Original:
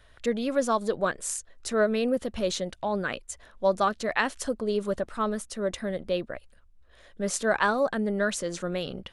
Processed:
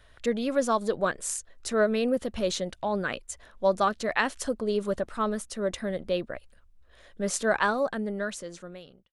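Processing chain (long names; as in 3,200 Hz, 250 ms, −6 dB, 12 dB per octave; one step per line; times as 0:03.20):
fade-out on the ending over 1.63 s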